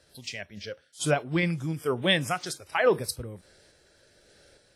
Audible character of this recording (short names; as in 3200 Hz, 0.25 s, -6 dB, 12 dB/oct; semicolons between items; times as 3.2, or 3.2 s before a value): random-step tremolo; WMA